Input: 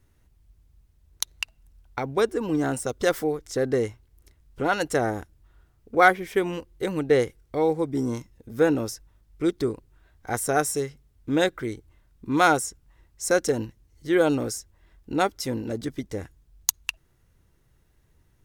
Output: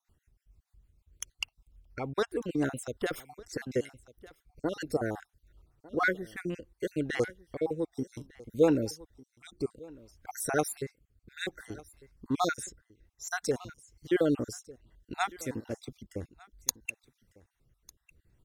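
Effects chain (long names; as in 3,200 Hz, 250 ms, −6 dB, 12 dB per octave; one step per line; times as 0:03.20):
time-frequency cells dropped at random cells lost 47%
single-tap delay 1,200 ms −21 dB
rotating-speaker cabinet horn 6.7 Hz, later 0.6 Hz, at 0:02.70
level −2.5 dB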